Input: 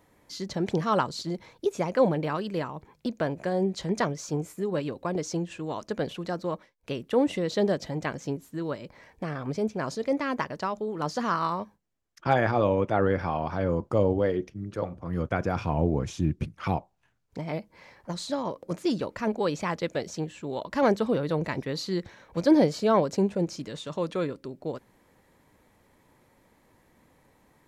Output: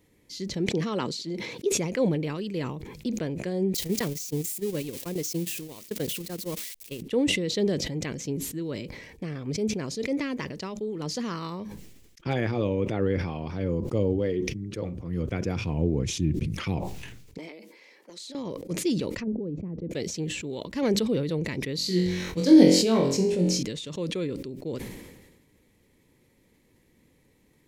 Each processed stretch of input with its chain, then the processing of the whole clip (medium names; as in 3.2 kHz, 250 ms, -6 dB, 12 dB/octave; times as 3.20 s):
0.69–1.72 s: high-pass 190 Hz + treble shelf 7.9 kHz -8.5 dB
3.74–7.02 s: zero-crossing glitches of -27.5 dBFS + gate -30 dBFS, range -24 dB
17.38–18.35 s: high-pass 300 Hz 24 dB/octave + compression 10:1, threshold -37 dBFS
19.10–19.91 s: low-pass that closes with the level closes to 310 Hz, closed at -27.5 dBFS + treble shelf 4.5 kHz +7.5 dB
21.76–23.63 s: treble shelf 4.2 kHz +5.5 dB + flutter echo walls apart 3.8 m, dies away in 0.46 s
whole clip: high-order bell 980 Hz -11.5 dB; decay stretcher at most 44 dB/s